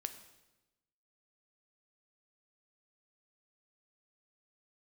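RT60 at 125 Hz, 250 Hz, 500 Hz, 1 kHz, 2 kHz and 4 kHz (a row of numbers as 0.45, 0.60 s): 1.2, 1.2, 1.1, 0.95, 0.95, 0.95 s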